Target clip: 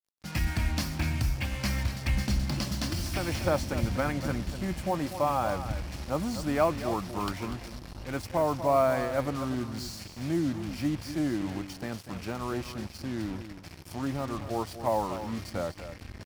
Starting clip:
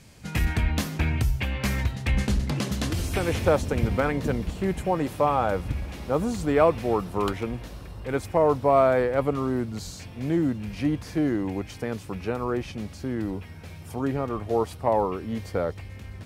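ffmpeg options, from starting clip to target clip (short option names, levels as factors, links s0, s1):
-af "superequalizer=7b=0.355:14b=2.24,acrusher=bits=5:mix=0:aa=0.5,aecho=1:1:243:0.282,volume=0.596"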